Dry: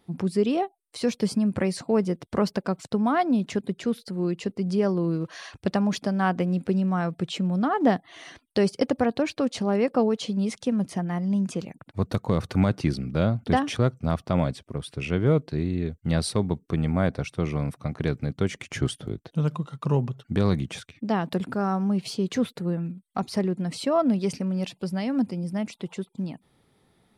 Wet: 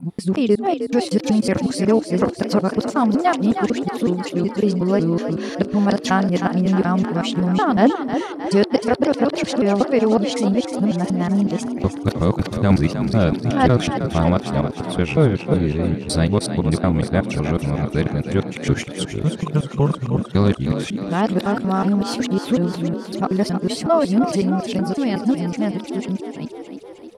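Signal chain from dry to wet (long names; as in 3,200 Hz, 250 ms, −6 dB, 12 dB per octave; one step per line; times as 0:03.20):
reversed piece by piece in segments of 185 ms
echo with shifted repeats 310 ms, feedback 62%, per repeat +44 Hz, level −9 dB
level +6 dB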